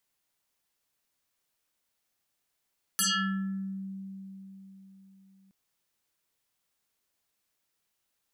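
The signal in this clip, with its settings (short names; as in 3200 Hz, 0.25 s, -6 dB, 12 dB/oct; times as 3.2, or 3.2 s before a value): FM tone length 2.52 s, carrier 193 Hz, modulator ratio 7.93, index 9.2, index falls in 0.75 s exponential, decay 4.17 s, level -23 dB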